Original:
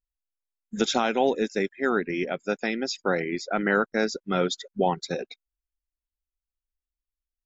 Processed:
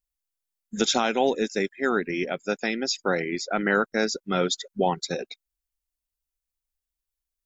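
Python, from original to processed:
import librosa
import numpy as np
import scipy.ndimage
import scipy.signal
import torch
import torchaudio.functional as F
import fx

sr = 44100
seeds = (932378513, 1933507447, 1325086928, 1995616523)

y = fx.high_shelf(x, sr, hz=4700.0, db=8.5)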